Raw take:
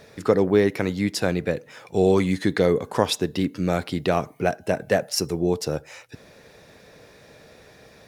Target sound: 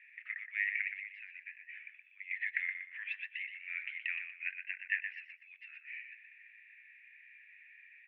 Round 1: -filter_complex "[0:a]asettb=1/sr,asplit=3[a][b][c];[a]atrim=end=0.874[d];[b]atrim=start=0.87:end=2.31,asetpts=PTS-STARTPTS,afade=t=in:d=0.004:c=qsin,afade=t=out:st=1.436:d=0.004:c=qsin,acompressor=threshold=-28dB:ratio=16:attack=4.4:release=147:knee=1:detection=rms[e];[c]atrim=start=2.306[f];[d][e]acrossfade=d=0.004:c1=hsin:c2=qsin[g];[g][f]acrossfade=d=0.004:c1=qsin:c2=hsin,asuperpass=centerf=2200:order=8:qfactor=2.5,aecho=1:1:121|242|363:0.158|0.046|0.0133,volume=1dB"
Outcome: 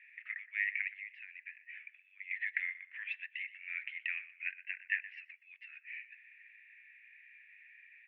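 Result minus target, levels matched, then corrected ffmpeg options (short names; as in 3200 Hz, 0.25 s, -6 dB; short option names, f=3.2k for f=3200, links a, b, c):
echo-to-direct -8.5 dB
-filter_complex "[0:a]asettb=1/sr,asplit=3[a][b][c];[a]atrim=end=0.874[d];[b]atrim=start=0.87:end=2.31,asetpts=PTS-STARTPTS,afade=t=in:d=0.004:c=qsin,afade=t=out:st=1.436:d=0.004:c=qsin,acompressor=threshold=-28dB:ratio=16:attack=4.4:release=147:knee=1:detection=rms[e];[c]atrim=start=2.306[f];[d][e]acrossfade=d=0.004:c1=hsin:c2=qsin[g];[g][f]acrossfade=d=0.004:c1=qsin:c2=hsin,asuperpass=centerf=2200:order=8:qfactor=2.5,aecho=1:1:121|242|363|484:0.422|0.122|0.0355|0.0103,volume=1dB"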